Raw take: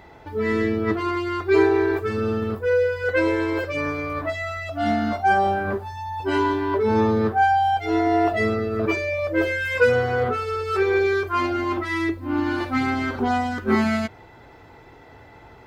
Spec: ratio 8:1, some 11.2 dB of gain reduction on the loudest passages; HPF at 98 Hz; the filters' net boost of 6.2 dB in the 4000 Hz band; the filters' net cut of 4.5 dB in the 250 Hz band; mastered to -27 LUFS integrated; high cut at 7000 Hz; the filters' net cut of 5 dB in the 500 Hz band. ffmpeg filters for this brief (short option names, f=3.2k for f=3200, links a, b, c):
-af "highpass=98,lowpass=7k,equalizer=f=250:t=o:g=-4,equalizer=f=500:t=o:g=-5,equalizer=f=4k:t=o:g=8.5,acompressor=threshold=-27dB:ratio=8,volume=3.5dB"